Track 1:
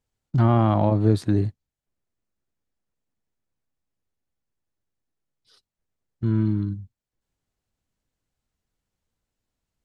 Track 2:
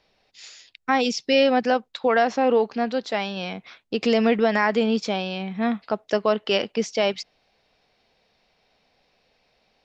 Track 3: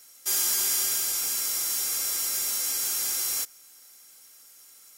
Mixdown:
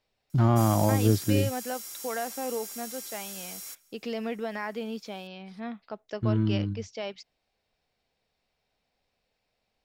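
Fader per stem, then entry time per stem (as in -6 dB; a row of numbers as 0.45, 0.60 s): -3.5, -13.5, -13.0 dB; 0.00, 0.00, 0.30 s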